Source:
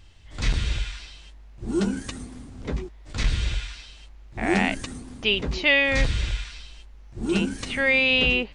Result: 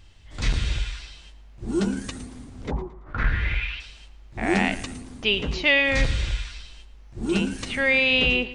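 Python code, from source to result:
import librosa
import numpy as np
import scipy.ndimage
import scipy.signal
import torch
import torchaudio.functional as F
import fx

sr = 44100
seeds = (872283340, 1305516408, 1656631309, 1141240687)

p1 = fx.lowpass_res(x, sr, hz=fx.line((2.7, 830.0), (3.79, 2900.0)), q=5.0, at=(2.7, 3.79), fade=0.02)
y = p1 + fx.echo_feedback(p1, sr, ms=112, feedback_pct=37, wet_db=-16.0, dry=0)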